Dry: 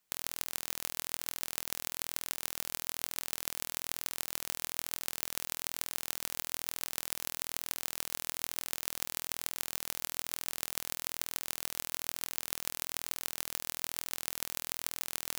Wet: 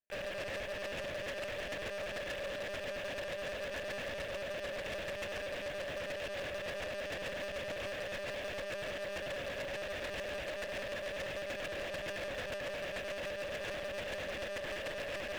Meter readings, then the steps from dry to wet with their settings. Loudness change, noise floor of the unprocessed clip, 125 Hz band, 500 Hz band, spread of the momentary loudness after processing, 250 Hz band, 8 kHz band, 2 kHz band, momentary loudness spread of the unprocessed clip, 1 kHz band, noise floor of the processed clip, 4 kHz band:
-3.5 dB, -79 dBFS, +5.0 dB, +15.0 dB, 0 LU, +4.0 dB, -16.5 dB, +5.0 dB, 1 LU, +0.5 dB, -42 dBFS, -3.5 dB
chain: high-order bell 890 Hz +9 dB; flange 0.6 Hz, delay 8.1 ms, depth 9.3 ms, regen +80%; vowel filter e; on a send: thinning echo 535 ms, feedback 60%, high-pass 890 Hz, level -18.5 dB; on the sum: monotone LPC vocoder at 8 kHz 200 Hz; waveshaping leveller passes 5; bass shelf 140 Hz -4 dB; trim +7 dB

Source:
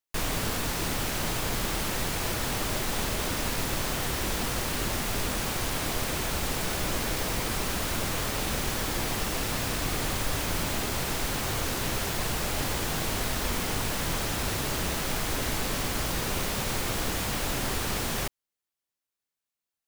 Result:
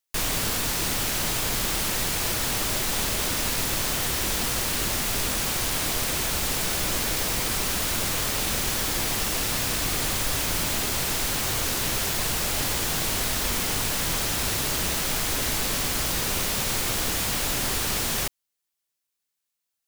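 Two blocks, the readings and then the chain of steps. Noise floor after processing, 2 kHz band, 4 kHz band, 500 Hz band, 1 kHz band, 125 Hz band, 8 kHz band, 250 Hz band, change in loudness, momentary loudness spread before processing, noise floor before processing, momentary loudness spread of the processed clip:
-82 dBFS, +3.0 dB, +5.5 dB, +0.5 dB, +1.0 dB, 0.0 dB, +7.0 dB, 0.0 dB, +5.0 dB, 0 LU, under -85 dBFS, 0 LU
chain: treble shelf 2.4 kHz +7.5 dB

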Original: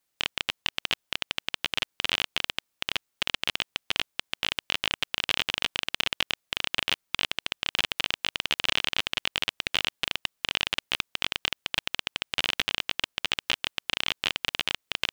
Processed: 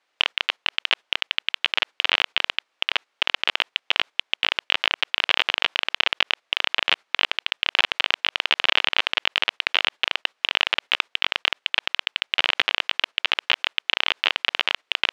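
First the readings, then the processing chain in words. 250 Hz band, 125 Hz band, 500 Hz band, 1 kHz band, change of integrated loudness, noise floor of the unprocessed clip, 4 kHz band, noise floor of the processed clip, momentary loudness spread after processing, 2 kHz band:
-2.5 dB, under -15 dB, +5.5 dB, +7.5 dB, +6.0 dB, -79 dBFS, +5.5 dB, -74 dBFS, 4 LU, +7.5 dB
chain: gate -37 dBFS, range -12 dB; in parallel at +1.5 dB: compressor with a negative ratio -38 dBFS, ratio -1; on the sum: band-pass 480–3000 Hz; loudness maximiser +15 dB; trim -1 dB

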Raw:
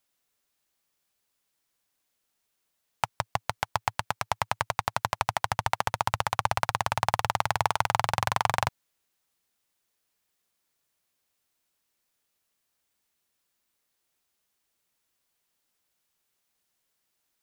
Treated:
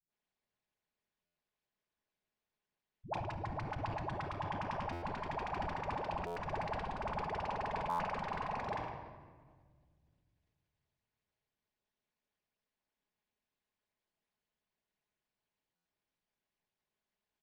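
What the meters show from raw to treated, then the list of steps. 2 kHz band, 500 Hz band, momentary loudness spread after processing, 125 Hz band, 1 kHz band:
-13.0 dB, -5.5 dB, 4 LU, -8.0 dB, -11.0 dB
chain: harmonic-percussive split harmonic -16 dB; speakerphone echo 110 ms, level -19 dB; saturation -22 dBFS, distortion -5 dB; AM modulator 210 Hz, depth 85%; low-pass 5.2 kHz 12 dB/octave; treble shelf 3.3 kHz -11.5 dB; phase dispersion highs, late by 104 ms, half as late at 360 Hz; compression, threshold -37 dBFS, peak gain reduction 4 dB; peaking EQ 1.3 kHz -7 dB 0.22 oct; simulated room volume 2600 m³, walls mixed, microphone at 1.4 m; buffer glitch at 1.25/4.92/6.26/7.89/15.75 s, samples 512, times 8; decay stretcher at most 40 dB/s; trim +1.5 dB

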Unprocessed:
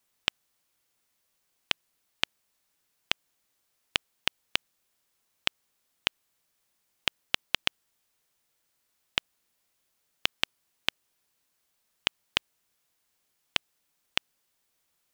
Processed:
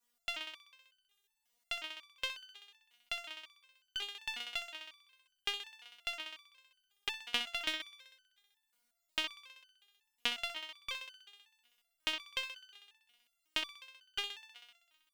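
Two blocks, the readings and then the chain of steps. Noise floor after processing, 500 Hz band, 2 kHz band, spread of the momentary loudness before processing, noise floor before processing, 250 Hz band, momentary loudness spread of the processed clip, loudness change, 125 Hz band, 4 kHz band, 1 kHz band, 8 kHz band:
-83 dBFS, -6.0 dB, -6.0 dB, 3 LU, -76 dBFS, -7.5 dB, 19 LU, -7.5 dB, under -15 dB, -6.5 dB, -6.0 dB, -6.5 dB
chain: thinning echo 64 ms, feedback 72%, high-pass 240 Hz, level -9.5 dB; resonator arpeggio 5.5 Hz 240–1500 Hz; trim +9 dB

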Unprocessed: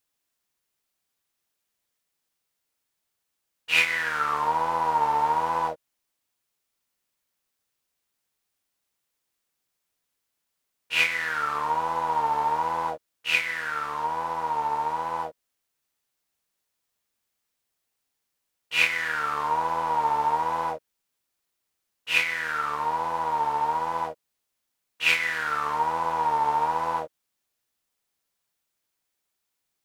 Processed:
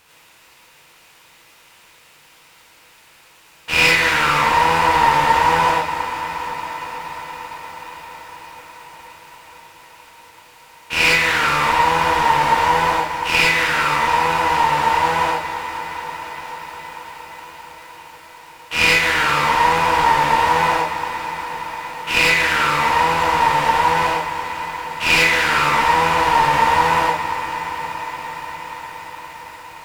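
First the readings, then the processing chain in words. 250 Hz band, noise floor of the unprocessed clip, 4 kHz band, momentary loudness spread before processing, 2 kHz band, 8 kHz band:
+14.5 dB, -81 dBFS, +12.0 dB, 8 LU, +11.0 dB, +14.0 dB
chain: spectral levelling over time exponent 0.6; bass shelf 150 Hz +11 dB; one-sided clip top -23 dBFS; on a send: echo that smears into a reverb 456 ms, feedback 78%, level -15 dB; on the sum: gated-style reverb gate 130 ms rising, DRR -4.5 dB; bit-crushed delay 234 ms, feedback 80%, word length 7-bit, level -14.5 dB; trim +1.5 dB

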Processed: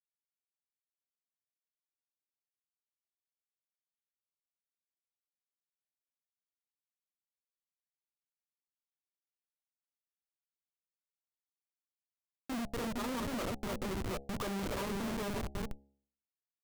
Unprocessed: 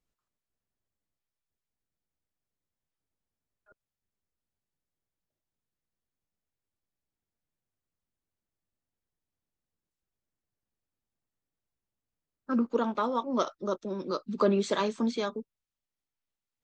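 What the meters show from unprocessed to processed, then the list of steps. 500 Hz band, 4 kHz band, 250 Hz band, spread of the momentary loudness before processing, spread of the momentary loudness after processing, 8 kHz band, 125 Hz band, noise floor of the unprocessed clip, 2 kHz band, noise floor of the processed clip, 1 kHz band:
-10.5 dB, -3.5 dB, -7.5 dB, 8 LU, 6 LU, +1.0 dB, no reading, under -85 dBFS, -1.5 dB, under -85 dBFS, -9.0 dB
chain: backward echo that repeats 328 ms, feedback 44%, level -8 dB; Schmitt trigger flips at -32 dBFS; de-hum 69.06 Hz, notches 12

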